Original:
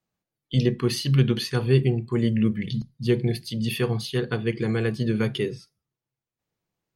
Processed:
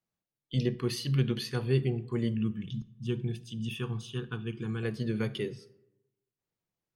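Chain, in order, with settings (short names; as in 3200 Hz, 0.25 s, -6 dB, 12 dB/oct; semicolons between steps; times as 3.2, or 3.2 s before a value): 2.34–4.83 fixed phaser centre 3000 Hz, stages 8; digital reverb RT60 1 s, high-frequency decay 0.5×, pre-delay 10 ms, DRR 18.5 dB; gain -7.5 dB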